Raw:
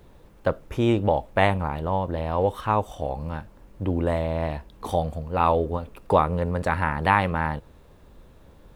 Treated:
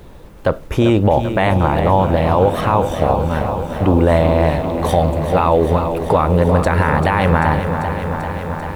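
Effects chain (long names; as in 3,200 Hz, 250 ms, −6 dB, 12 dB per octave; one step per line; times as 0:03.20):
on a send: bucket-brigade delay 349 ms, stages 2,048, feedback 66%, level −15 dB
on the sum: boost into a limiter +15.5 dB
feedback echo at a low word length 391 ms, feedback 80%, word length 7 bits, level −9.5 dB
level −3.5 dB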